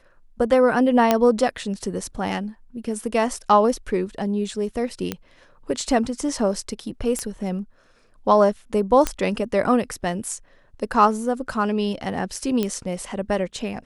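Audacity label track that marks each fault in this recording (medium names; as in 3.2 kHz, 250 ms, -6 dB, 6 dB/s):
1.110000	1.110000	pop -3 dBFS
5.120000	5.120000	pop -10 dBFS
7.190000	7.190000	pop -13 dBFS
9.070000	9.070000	pop -7 dBFS
12.630000	12.630000	pop -10 dBFS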